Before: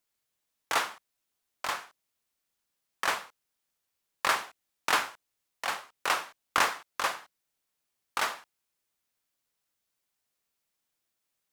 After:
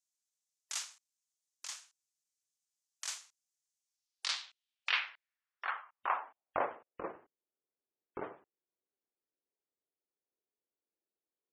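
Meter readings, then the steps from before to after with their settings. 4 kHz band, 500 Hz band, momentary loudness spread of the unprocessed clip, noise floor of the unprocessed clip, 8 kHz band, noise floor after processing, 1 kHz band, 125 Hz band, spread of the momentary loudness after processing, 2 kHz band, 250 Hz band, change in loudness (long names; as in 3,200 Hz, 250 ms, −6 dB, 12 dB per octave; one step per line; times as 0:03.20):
−6.0 dB, −5.0 dB, 10 LU, −83 dBFS, −6.0 dB, below −85 dBFS, −9.5 dB, −8.0 dB, 14 LU, −9.5 dB, −6.0 dB, −8.0 dB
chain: half-wave rectification
band-pass filter sweep 6,700 Hz → 390 Hz, 0:03.83–0:07.14
gate on every frequency bin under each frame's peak −25 dB strong
level +5 dB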